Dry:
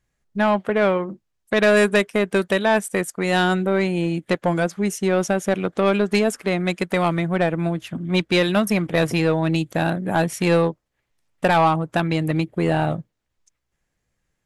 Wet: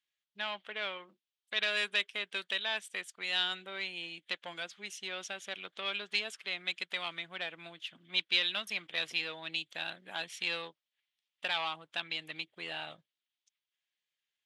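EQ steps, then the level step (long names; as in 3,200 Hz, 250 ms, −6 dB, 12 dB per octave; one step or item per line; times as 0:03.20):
resonant band-pass 3,300 Hz, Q 3.1
0.0 dB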